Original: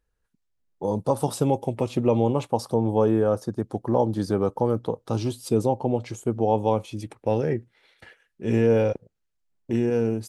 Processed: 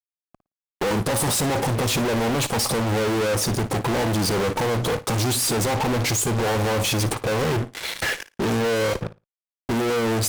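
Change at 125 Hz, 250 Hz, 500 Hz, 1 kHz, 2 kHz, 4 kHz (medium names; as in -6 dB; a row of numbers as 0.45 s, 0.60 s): +3.0 dB, 0.0 dB, -0.5 dB, +3.0 dB, +15.5 dB, +17.0 dB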